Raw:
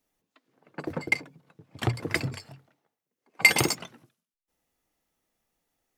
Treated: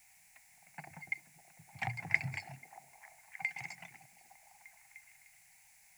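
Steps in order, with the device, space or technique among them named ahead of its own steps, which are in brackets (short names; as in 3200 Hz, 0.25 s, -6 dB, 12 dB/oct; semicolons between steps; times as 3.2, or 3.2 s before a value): medium wave at night (BPF 130–4400 Hz; compressor, threshold -33 dBFS, peak gain reduction 18.5 dB; tremolo 0.44 Hz, depth 74%; whine 10000 Hz -71 dBFS; white noise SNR 16 dB); EQ curve 170 Hz 0 dB, 280 Hz -20 dB, 490 Hz -24 dB, 780 Hz +7 dB, 1200 Hz -14 dB, 2200 Hz +11 dB, 3200 Hz -11 dB, 7500 Hz +4 dB, 11000 Hz -3 dB; delay with a stepping band-pass 0.302 s, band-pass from 320 Hz, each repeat 0.7 oct, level -7 dB; gain +1 dB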